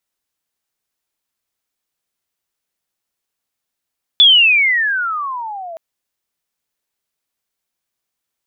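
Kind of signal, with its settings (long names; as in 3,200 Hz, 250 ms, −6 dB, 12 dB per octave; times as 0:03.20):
glide logarithmic 3,500 Hz → 640 Hz −4 dBFS → −27 dBFS 1.57 s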